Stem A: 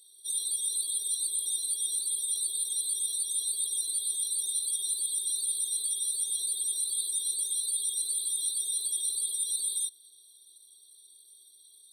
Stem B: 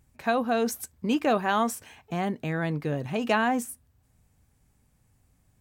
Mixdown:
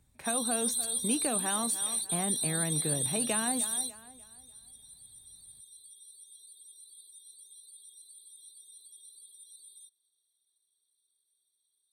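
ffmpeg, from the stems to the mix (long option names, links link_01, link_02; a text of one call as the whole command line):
ffmpeg -i stem1.wav -i stem2.wav -filter_complex "[0:a]volume=-1dB[link_01];[1:a]volume=-4.5dB,asplit=3[link_02][link_03][link_04];[link_03]volume=-17.5dB[link_05];[link_04]apad=whole_len=525908[link_06];[link_01][link_06]sidechaingate=range=-21dB:threshold=-60dB:ratio=16:detection=peak[link_07];[link_05]aecho=0:1:297|594|891|1188|1485:1|0.33|0.109|0.0359|0.0119[link_08];[link_07][link_02][link_08]amix=inputs=3:normalize=0,acrossover=split=220|3000[link_09][link_10][link_11];[link_10]acompressor=threshold=-32dB:ratio=6[link_12];[link_09][link_12][link_11]amix=inputs=3:normalize=0" out.wav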